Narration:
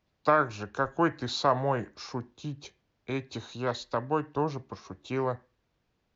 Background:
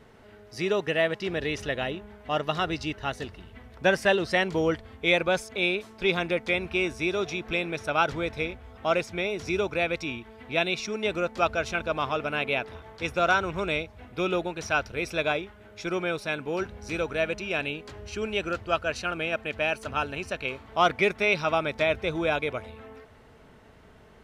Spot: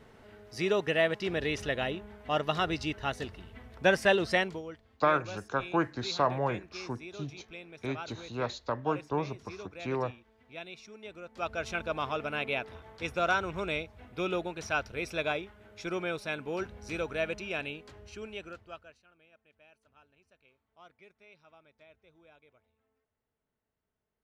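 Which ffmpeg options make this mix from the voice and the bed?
-filter_complex "[0:a]adelay=4750,volume=-2.5dB[a];[1:a]volume=11dB,afade=t=out:st=4.34:d=0.28:silence=0.158489,afade=t=in:st=11.25:d=0.46:silence=0.223872,afade=t=out:st=17.34:d=1.65:silence=0.0354813[b];[a][b]amix=inputs=2:normalize=0"

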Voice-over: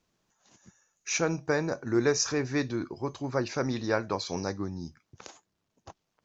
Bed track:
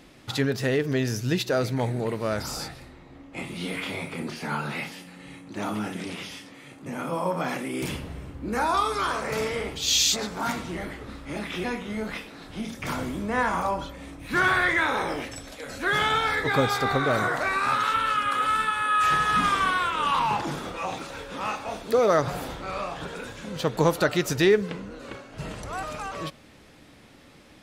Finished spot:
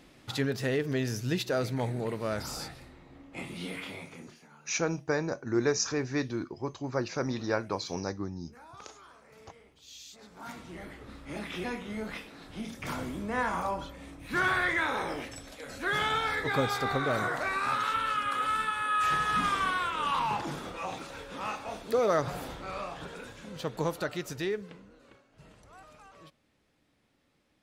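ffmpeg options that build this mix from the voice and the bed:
-filter_complex "[0:a]adelay=3600,volume=-2dB[a];[1:a]volume=17dB,afade=t=out:st=3.52:d=0.97:silence=0.0749894,afade=t=in:st=10.13:d=1.25:silence=0.0794328,afade=t=out:st=22.65:d=2.57:silence=0.188365[b];[a][b]amix=inputs=2:normalize=0"

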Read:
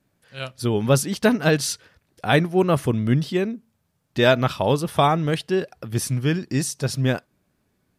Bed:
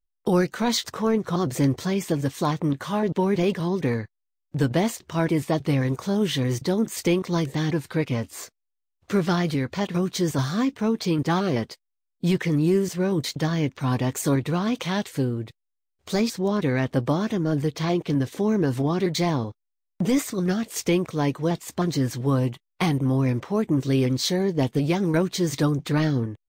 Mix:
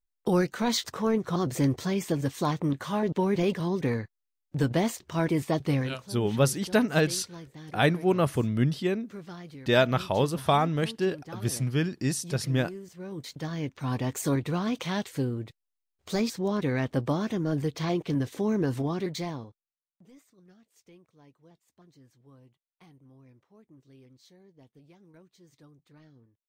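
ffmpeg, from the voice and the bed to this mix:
-filter_complex "[0:a]adelay=5500,volume=-5dB[a];[1:a]volume=12dB,afade=t=out:st=5.75:d=0.28:silence=0.149624,afade=t=in:st=12.9:d=1.29:silence=0.16788,afade=t=out:st=18.7:d=1.05:silence=0.0354813[b];[a][b]amix=inputs=2:normalize=0"

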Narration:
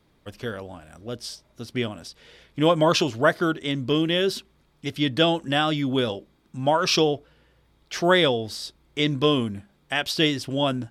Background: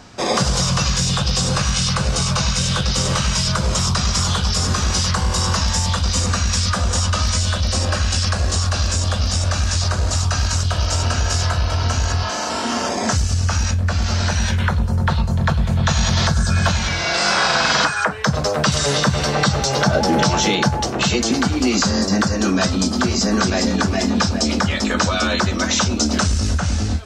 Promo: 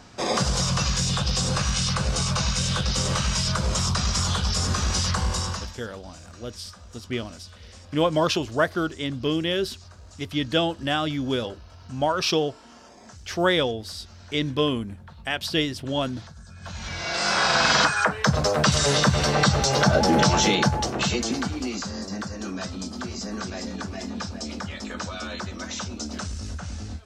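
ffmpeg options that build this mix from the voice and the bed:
-filter_complex "[0:a]adelay=5350,volume=-2.5dB[a];[1:a]volume=19.5dB,afade=t=out:st=5.26:d=0.51:silence=0.0794328,afade=t=in:st=16.6:d=1.05:silence=0.0562341,afade=t=out:st=20.41:d=1.42:silence=0.251189[b];[a][b]amix=inputs=2:normalize=0"

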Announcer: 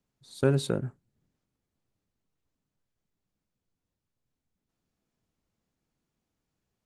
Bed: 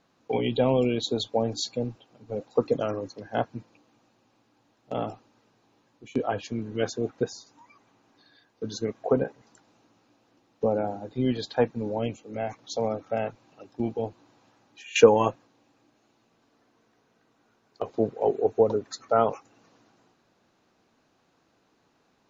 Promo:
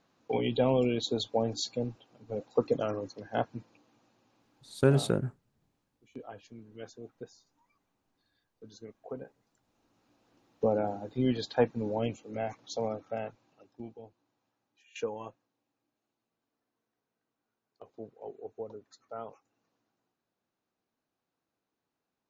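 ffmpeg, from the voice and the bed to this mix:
-filter_complex "[0:a]adelay=4400,volume=0.5dB[a];[1:a]volume=11.5dB,afade=t=out:st=4.76:d=0.36:silence=0.199526,afade=t=in:st=9.61:d=0.85:silence=0.177828,afade=t=out:st=12.25:d=1.78:silence=0.141254[b];[a][b]amix=inputs=2:normalize=0"

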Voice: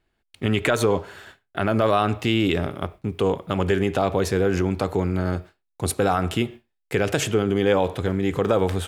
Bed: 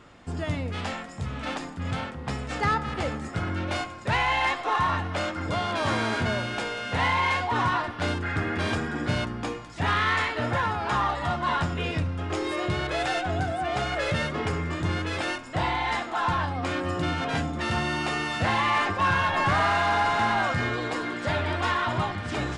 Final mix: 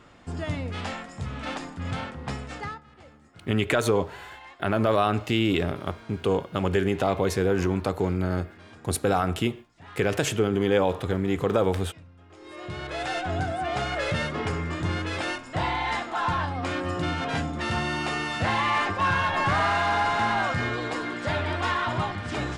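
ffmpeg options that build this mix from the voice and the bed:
-filter_complex "[0:a]adelay=3050,volume=-2.5dB[a];[1:a]volume=20dB,afade=t=out:st=2.3:d=0.51:silence=0.0944061,afade=t=in:st=12.37:d=0.98:silence=0.0891251[b];[a][b]amix=inputs=2:normalize=0"

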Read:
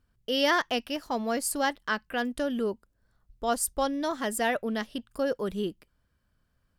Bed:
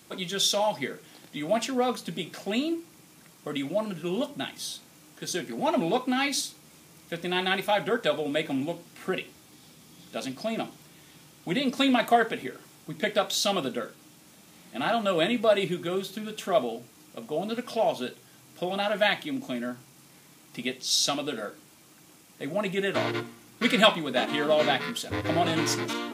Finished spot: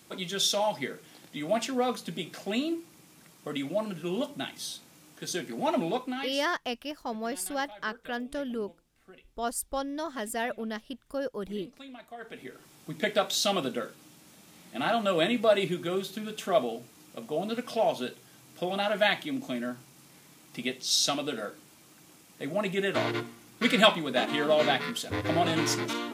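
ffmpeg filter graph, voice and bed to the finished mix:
-filter_complex "[0:a]adelay=5950,volume=-4.5dB[a];[1:a]volume=20.5dB,afade=t=out:st=5.75:d=0.72:silence=0.0841395,afade=t=in:st=12.17:d=0.71:silence=0.0749894[b];[a][b]amix=inputs=2:normalize=0"

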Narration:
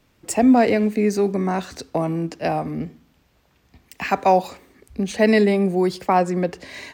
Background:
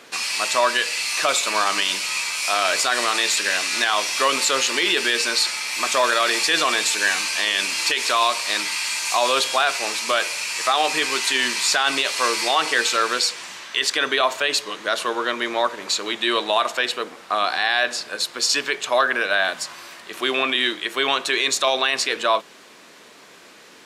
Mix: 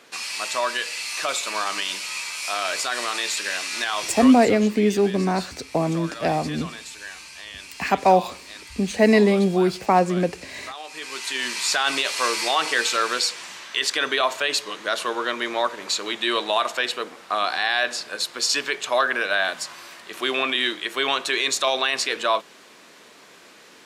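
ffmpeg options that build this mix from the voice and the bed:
-filter_complex "[0:a]adelay=3800,volume=0dB[a];[1:a]volume=10dB,afade=t=out:st=4.05:d=0.47:silence=0.251189,afade=t=in:st=10.89:d=0.94:silence=0.16788[b];[a][b]amix=inputs=2:normalize=0"

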